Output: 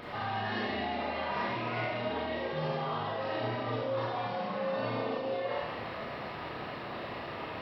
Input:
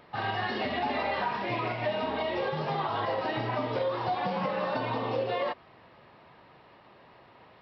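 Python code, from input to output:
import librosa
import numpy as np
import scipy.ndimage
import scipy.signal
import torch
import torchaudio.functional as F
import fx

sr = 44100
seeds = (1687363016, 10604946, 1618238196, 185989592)

y = fx.notch(x, sr, hz=900.0, q=14.0)
y = fx.over_compress(y, sr, threshold_db=-41.0, ratio=-1.0)
y = fx.rev_schroeder(y, sr, rt60_s=1.2, comb_ms=26, drr_db=-5.5)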